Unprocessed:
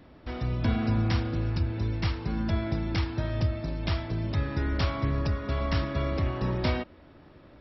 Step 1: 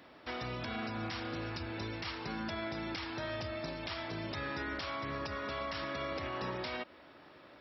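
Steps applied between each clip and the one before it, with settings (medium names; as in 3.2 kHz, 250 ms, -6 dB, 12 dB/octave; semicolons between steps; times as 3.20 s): high-pass 880 Hz 6 dB/octave; compression, threshold -37 dBFS, peak gain reduction 8 dB; peak limiter -33.5 dBFS, peak gain reduction 8 dB; trim +4 dB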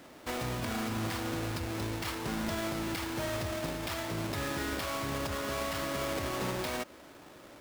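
square wave that keeps the level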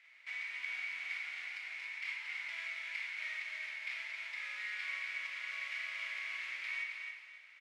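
ladder band-pass 2.3 kHz, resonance 80%; feedback delay 271 ms, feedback 28%, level -6 dB; on a send at -1 dB: reverberation RT60 1.2 s, pre-delay 9 ms; on the sum: trim +1 dB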